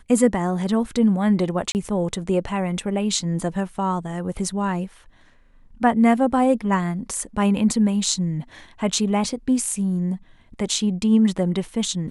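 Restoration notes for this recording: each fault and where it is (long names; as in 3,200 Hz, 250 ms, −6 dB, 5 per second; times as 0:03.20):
0:01.72–0:01.75: drop-out 29 ms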